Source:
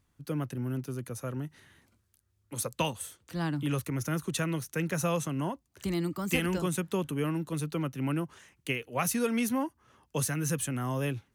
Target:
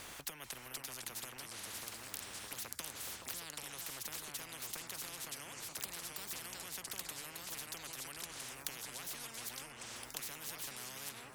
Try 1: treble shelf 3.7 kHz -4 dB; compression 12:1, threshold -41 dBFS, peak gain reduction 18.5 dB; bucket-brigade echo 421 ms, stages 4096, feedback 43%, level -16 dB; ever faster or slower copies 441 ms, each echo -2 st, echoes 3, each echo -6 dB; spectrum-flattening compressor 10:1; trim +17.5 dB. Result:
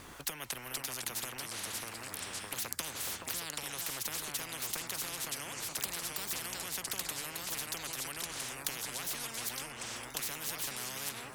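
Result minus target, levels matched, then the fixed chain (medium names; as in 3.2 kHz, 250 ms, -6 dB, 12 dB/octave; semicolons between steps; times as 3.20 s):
compression: peak gain reduction -11 dB
treble shelf 3.7 kHz -4 dB; compression 12:1, threshold -53 dBFS, peak gain reduction 29.5 dB; bucket-brigade echo 421 ms, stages 4096, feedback 43%, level -16 dB; ever faster or slower copies 441 ms, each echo -2 st, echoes 3, each echo -6 dB; spectrum-flattening compressor 10:1; trim +17.5 dB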